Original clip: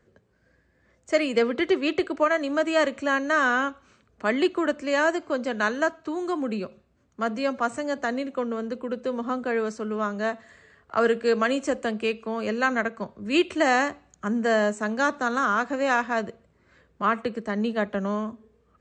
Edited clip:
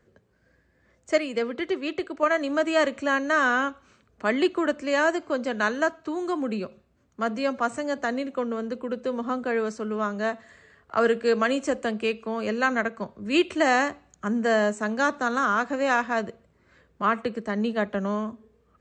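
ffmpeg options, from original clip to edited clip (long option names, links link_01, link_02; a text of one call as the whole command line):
ffmpeg -i in.wav -filter_complex "[0:a]asplit=3[link_01][link_02][link_03];[link_01]atrim=end=1.182[link_04];[link_02]atrim=start=1.178:end=2.232,asetpts=PTS-STARTPTS,volume=-5dB[link_05];[link_03]atrim=start=2.228[link_06];[link_04][link_05]acrossfade=duration=0.004:curve1=hsin:curve2=hsin[link_07];[link_07][link_06]acrossfade=duration=0.004:curve1=hsin:curve2=hsin" out.wav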